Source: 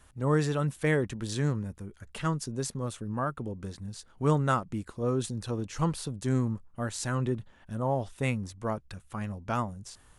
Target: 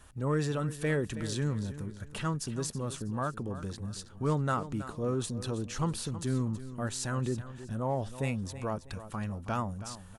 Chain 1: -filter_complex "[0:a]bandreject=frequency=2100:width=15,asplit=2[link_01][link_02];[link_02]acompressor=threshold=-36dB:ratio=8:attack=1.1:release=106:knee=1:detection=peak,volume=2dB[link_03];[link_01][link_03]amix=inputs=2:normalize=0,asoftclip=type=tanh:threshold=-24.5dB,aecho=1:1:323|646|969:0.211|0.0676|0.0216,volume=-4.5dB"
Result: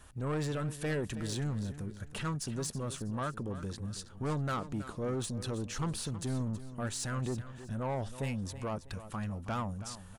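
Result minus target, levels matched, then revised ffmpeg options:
soft clipping: distortion +14 dB
-filter_complex "[0:a]bandreject=frequency=2100:width=15,asplit=2[link_01][link_02];[link_02]acompressor=threshold=-36dB:ratio=8:attack=1.1:release=106:knee=1:detection=peak,volume=2dB[link_03];[link_01][link_03]amix=inputs=2:normalize=0,asoftclip=type=tanh:threshold=-13dB,aecho=1:1:323|646|969:0.211|0.0676|0.0216,volume=-4.5dB"

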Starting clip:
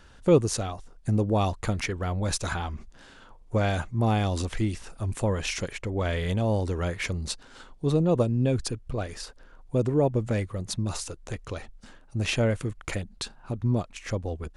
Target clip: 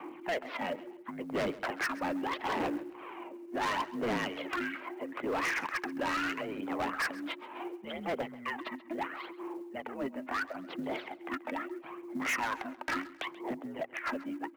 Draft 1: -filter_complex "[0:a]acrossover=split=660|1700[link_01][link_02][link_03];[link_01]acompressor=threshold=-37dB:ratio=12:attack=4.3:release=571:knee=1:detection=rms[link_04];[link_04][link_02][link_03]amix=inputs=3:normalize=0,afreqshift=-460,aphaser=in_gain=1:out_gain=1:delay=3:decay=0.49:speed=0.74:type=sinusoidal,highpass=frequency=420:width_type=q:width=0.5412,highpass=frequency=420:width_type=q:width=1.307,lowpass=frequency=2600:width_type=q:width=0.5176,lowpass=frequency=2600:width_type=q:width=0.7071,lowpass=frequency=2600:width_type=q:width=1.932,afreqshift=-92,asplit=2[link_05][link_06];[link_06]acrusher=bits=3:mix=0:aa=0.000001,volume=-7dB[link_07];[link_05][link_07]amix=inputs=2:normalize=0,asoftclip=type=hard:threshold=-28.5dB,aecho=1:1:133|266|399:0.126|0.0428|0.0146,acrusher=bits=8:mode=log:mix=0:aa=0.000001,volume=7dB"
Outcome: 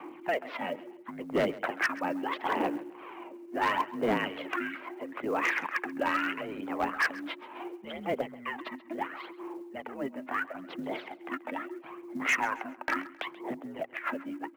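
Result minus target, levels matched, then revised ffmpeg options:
hard clipping: distortion −4 dB
-filter_complex "[0:a]acrossover=split=660|1700[link_01][link_02][link_03];[link_01]acompressor=threshold=-37dB:ratio=12:attack=4.3:release=571:knee=1:detection=rms[link_04];[link_04][link_02][link_03]amix=inputs=3:normalize=0,afreqshift=-460,aphaser=in_gain=1:out_gain=1:delay=3:decay=0.49:speed=0.74:type=sinusoidal,highpass=frequency=420:width_type=q:width=0.5412,highpass=frequency=420:width_type=q:width=1.307,lowpass=frequency=2600:width_type=q:width=0.5176,lowpass=frequency=2600:width_type=q:width=0.7071,lowpass=frequency=2600:width_type=q:width=1.932,afreqshift=-92,asplit=2[link_05][link_06];[link_06]acrusher=bits=3:mix=0:aa=0.000001,volume=-7dB[link_07];[link_05][link_07]amix=inputs=2:normalize=0,asoftclip=type=hard:threshold=-36dB,aecho=1:1:133|266|399:0.126|0.0428|0.0146,acrusher=bits=8:mode=log:mix=0:aa=0.000001,volume=7dB"

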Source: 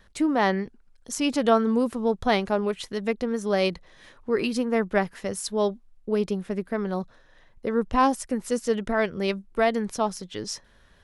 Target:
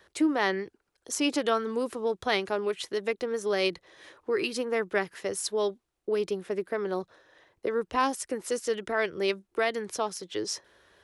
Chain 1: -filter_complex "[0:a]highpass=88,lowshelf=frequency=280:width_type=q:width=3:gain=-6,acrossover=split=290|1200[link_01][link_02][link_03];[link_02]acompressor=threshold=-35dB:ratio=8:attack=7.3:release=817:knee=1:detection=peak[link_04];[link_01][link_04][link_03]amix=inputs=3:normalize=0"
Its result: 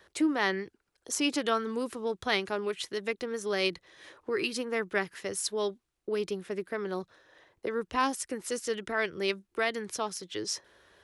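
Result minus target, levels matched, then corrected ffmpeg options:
downward compressor: peak gain reduction +6.5 dB
-filter_complex "[0:a]highpass=88,lowshelf=frequency=280:width_type=q:width=3:gain=-6,acrossover=split=290|1200[link_01][link_02][link_03];[link_02]acompressor=threshold=-27.5dB:ratio=8:attack=7.3:release=817:knee=1:detection=peak[link_04];[link_01][link_04][link_03]amix=inputs=3:normalize=0"

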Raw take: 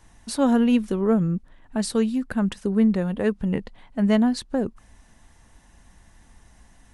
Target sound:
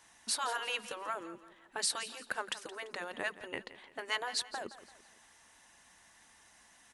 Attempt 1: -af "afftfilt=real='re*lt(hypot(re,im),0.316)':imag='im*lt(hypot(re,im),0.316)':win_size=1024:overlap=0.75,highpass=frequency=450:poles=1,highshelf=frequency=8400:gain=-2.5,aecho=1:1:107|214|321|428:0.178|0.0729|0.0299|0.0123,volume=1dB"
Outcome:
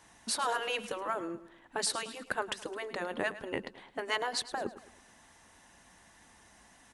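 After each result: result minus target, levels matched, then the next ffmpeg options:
echo 63 ms early; 500 Hz band +4.5 dB
-af "afftfilt=real='re*lt(hypot(re,im),0.316)':imag='im*lt(hypot(re,im),0.316)':win_size=1024:overlap=0.75,highpass=frequency=450:poles=1,highshelf=frequency=8400:gain=-2.5,aecho=1:1:170|340|510|680:0.178|0.0729|0.0299|0.0123,volume=1dB"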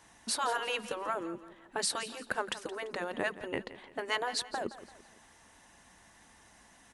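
500 Hz band +4.5 dB
-af "afftfilt=real='re*lt(hypot(re,im),0.316)':imag='im*lt(hypot(re,im),0.316)':win_size=1024:overlap=0.75,highpass=frequency=1400:poles=1,highshelf=frequency=8400:gain=-2.5,aecho=1:1:170|340|510|680:0.178|0.0729|0.0299|0.0123,volume=1dB"

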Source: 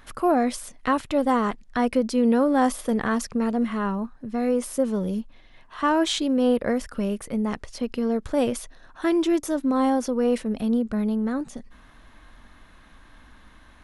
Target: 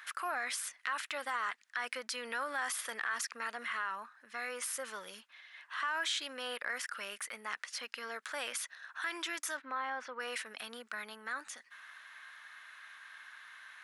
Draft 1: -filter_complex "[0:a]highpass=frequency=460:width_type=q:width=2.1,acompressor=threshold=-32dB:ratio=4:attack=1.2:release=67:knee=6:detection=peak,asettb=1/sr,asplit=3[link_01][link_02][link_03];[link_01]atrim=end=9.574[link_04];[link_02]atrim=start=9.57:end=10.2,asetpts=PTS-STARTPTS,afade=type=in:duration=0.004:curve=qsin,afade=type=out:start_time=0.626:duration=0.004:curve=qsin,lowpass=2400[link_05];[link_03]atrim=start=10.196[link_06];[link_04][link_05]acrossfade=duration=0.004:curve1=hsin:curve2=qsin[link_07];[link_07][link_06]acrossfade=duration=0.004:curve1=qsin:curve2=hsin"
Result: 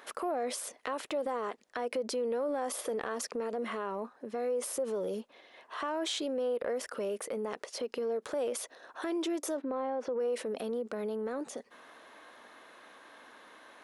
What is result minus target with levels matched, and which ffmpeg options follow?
2,000 Hz band −12.0 dB
-filter_complex "[0:a]highpass=frequency=1600:width_type=q:width=2.1,acompressor=threshold=-32dB:ratio=4:attack=1.2:release=67:knee=6:detection=peak,asettb=1/sr,asplit=3[link_01][link_02][link_03];[link_01]atrim=end=9.574[link_04];[link_02]atrim=start=9.57:end=10.2,asetpts=PTS-STARTPTS,afade=type=in:duration=0.004:curve=qsin,afade=type=out:start_time=0.626:duration=0.004:curve=qsin,lowpass=2400[link_05];[link_03]atrim=start=10.196[link_06];[link_04][link_05]acrossfade=duration=0.004:curve1=hsin:curve2=qsin[link_07];[link_07][link_06]acrossfade=duration=0.004:curve1=qsin:curve2=hsin"

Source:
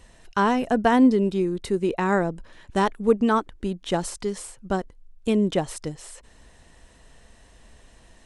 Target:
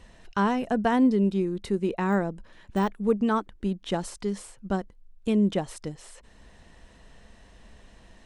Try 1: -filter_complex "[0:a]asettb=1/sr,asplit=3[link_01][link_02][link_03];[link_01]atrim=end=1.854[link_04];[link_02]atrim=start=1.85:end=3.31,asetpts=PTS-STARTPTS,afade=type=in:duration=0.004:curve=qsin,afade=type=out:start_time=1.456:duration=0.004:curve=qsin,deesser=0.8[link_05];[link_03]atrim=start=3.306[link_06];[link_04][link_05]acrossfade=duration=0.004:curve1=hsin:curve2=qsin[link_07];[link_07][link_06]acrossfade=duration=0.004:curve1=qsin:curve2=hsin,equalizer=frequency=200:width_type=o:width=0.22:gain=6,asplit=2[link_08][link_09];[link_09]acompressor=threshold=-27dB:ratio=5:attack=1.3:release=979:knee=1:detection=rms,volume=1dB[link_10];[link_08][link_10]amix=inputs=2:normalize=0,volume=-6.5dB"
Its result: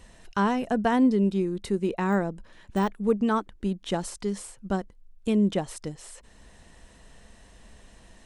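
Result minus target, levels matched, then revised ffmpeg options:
8,000 Hz band +3.0 dB
-filter_complex "[0:a]asettb=1/sr,asplit=3[link_01][link_02][link_03];[link_01]atrim=end=1.854[link_04];[link_02]atrim=start=1.85:end=3.31,asetpts=PTS-STARTPTS,afade=type=in:duration=0.004:curve=qsin,afade=type=out:start_time=1.456:duration=0.004:curve=qsin,deesser=0.8[link_05];[link_03]atrim=start=3.306[link_06];[link_04][link_05]acrossfade=duration=0.004:curve1=hsin:curve2=qsin[link_07];[link_07][link_06]acrossfade=duration=0.004:curve1=qsin:curve2=hsin,equalizer=frequency=200:width_type=o:width=0.22:gain=6,asplit=2[link_08][link_09];[link_09]acompressor=threshold=-27dB:ratio=5:attack=1.3:release=979:knee=1:detection=rms,lowpass=6300,volume=1dB[link_10];[link_08][link_10]amix=inputs=2:normalize=0,volume=-6.5dB"

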